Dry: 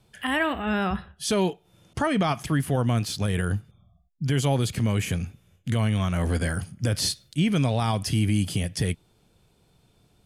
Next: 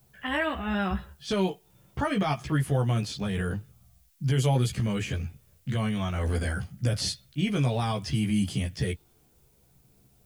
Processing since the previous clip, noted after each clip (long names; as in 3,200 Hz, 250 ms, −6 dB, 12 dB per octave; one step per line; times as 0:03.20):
multi-voice chorus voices 4, 0.34 Hz, delay 15 ms, depth 1.4 ms
low-pass that shuts in the quiet parts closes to 1,800 Hz, open at −21.5 dBFS
background noise blue −67 dBFS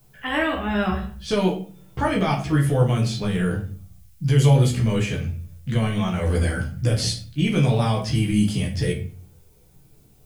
rectangular room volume 36 cubic metres, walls mixed, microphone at 0.52 metres
level +3 dB